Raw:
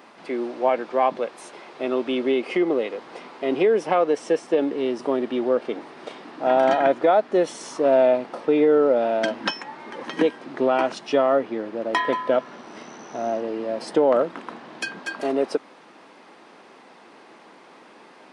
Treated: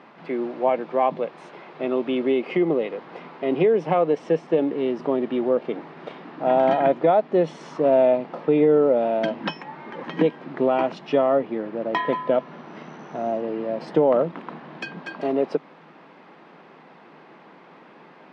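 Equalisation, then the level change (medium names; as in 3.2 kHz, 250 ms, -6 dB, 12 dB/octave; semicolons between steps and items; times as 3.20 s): low-pass 2.9 kHz 12 dB/octave; dynamic bell 1.5 kHz, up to -6 dB, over -40 dBFS, Q 2.3; peaking EQ 160 Hz +13 dB 0.38 oct; 0.0 dB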